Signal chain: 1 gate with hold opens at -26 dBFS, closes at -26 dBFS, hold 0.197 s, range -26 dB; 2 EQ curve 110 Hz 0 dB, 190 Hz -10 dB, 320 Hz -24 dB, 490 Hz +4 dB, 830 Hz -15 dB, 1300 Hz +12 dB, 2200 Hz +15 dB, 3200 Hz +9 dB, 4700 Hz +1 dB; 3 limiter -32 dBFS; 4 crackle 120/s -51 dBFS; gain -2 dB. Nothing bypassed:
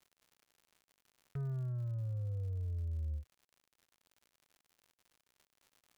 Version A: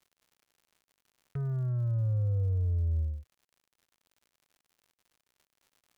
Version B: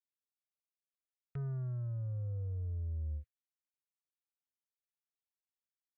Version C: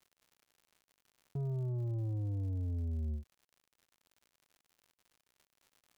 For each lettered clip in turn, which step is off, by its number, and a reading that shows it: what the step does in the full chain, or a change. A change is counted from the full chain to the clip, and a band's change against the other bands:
3, mean gain reduction 8.0 dB; 4, crest factor change -1.5 dB; 2, crest factor change -2.0 dB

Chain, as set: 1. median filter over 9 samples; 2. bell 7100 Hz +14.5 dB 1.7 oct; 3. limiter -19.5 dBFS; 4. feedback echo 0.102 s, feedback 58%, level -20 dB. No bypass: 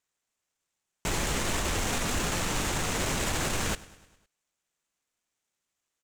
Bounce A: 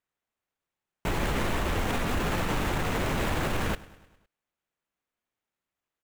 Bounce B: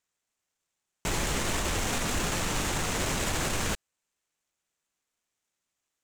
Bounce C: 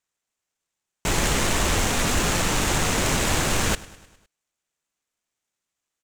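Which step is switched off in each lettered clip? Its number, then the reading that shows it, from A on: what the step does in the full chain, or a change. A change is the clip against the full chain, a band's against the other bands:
2, 8 kHz band -13.0 dB; 4, echo-to-direct -18.0 dB to none; 3, mean gain reduction 7.0 dB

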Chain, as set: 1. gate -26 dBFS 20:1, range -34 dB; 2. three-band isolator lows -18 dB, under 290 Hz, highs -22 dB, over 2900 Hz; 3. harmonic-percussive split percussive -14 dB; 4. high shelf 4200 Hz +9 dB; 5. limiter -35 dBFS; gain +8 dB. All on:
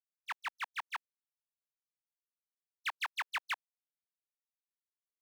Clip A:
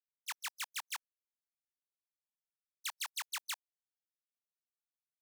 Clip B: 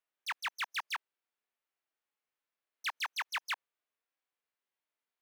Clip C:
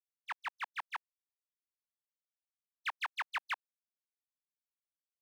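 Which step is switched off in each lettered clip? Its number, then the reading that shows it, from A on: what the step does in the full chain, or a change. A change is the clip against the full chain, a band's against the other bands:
2, 8 kHz band +19.0 dB; 1, momentary loudness spread change -2 LU; 4, 8 kHz band -6.0 dB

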